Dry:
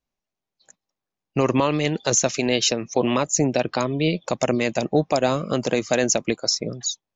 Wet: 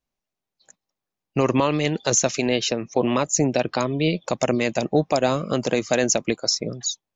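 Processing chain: 2.47–3.15 s: treble shelf 5.9 kHz -> 3.9 kHz -11 dB

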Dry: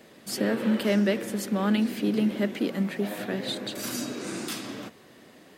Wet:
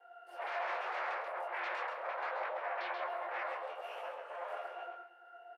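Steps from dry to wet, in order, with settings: ring modulator 160 Hz; half-wave rectifier; dynamic bell 1.9 kHz, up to -4 dB, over -48 dBFS, Q 0.97; pitch-class resonator F, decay 0.51 s; in parallel at -10 dB: sine folder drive 19 dB, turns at -38 dBFS; on the sum: Chebyshev high-pass 520 Hz, order 5; high-order bell 4.7 kHz -11 dB; feedback delay 134 ms, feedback 17%, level -5 dB; detune thickener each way 43 cents; trim +17.5 dB

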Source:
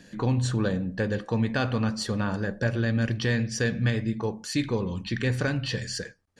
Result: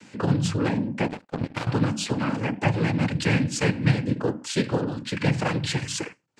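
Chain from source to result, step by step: noise-vocoded speech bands 8; 1.08–1.67 s: power-law waveshaper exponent 2; trim +3 dB

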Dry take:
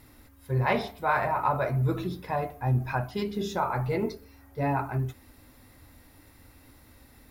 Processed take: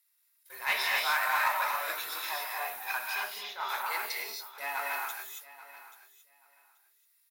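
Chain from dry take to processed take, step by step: partial rectifier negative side -3 dB; high-pass 1.1 kHz 12 dB/octave; gate -56 dBFS, range -25 dB; tilt EQ +4.5 dB/octave; saturation -16.5 dBFS, distortion -24 dB; 3.15–3.69 s: distance through air 330 m; feedback delay 832 ms, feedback 19%, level -16.5 dB; gated-style reverb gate 300 ms rising, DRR -1.5 dB; attacks held to a fixed rise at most 220 dB/s

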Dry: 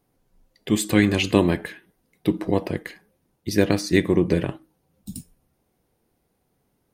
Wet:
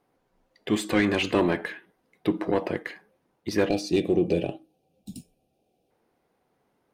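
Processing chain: overdrive pedal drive 20 dB, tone 1.4 kHz, clips at -2 dBFS; time-frequency box 3.69–5.90 s, 820–2300 Hz -17 dB; trim -7.5 dB

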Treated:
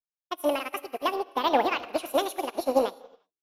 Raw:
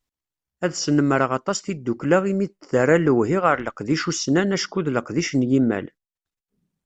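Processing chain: peak limiter -9 dBFS, peak gain reduction 5 dB; speed mistake 7.5 ips tape played at 15 ips; gated-style reverb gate 380 ms flat, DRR 6.5 dB; upward expansion 2.5:1, over -35 dBFS; trim -1.5 dB

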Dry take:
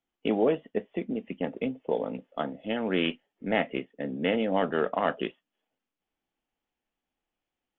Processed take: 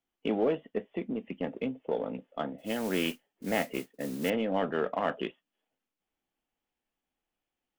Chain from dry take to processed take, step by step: in parallel at -7 dB: saturation -30 dBFS, distortion -6 dB; 2.58–4.30 s: on the sum: modulation noise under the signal 15 dB; trim -4.5 dB

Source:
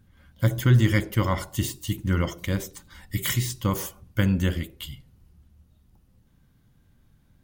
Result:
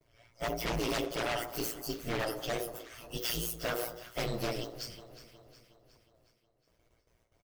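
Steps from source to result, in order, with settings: frequency axis rescaled in octaves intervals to 119%; gate with hold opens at -54 dBFS; resonant low shelf 320 Hz -12 dB, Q 3; comb 3.2 ms, depth 37%; in parallel at +2.5 dB: peak limiter -23 dBFS, peak gain reduction 9 dB; on the sum: band-stop 2.4 kHz, Q 11; wavefolder -21.5 dBFS; ring modulator 58 Hz; overload inside the chain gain 25 dB; on a send: echo whose repeats swap between lows and highs 182 ms, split 1.2 kHz, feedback 71%, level -12 dB; on the sum: trim -2.5 dB

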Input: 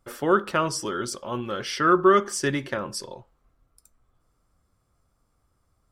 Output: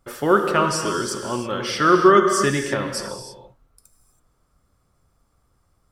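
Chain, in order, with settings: gated-style reverb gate 350 ms flat, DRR 4.5 dB; trim +3.5 dB

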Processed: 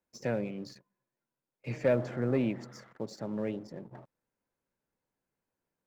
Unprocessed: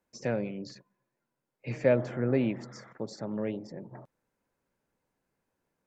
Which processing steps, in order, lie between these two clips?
waveshaping leveller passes 1; trim -5 dB

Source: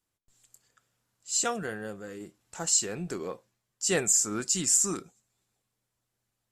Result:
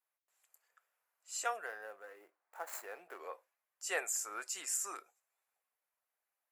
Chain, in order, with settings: 1.66–3.21 s: median filter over 15 samples; high-pass 590 Hz 24 dB/octave; high-order bell 5.2 kHz -10.5 dB; trim -3.5 dB

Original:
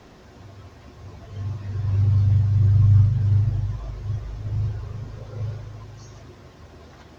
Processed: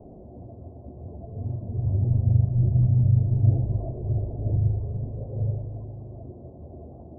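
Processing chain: 3.43–4.57 s: peaking EQ 410 Hz +6 dB 2.1 oct; elliptic low-pass 690 Hz, stop band 70 dB; hum notches 50/100/150/200/250/300/350/400/450/500 Hz; trim +5 dB

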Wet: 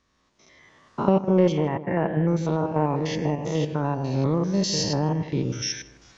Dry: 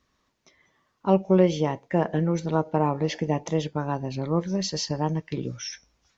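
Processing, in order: spectrogram pixelated in time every 100 ms; recorder AGC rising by 15 dB/s; in parallel at -10 dB: saturation -18.5 dBFS, distortion -12 dB; 1.52–2.28 s: on the sum: resonant high shelf 3.3 kHz -13 dB, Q 1.5; on a send: tape echo 157 ms, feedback 46%, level -11.5 dB, low-pass 1.1 kHz; on the sum: MP3 48 kbps 22.05 kHz

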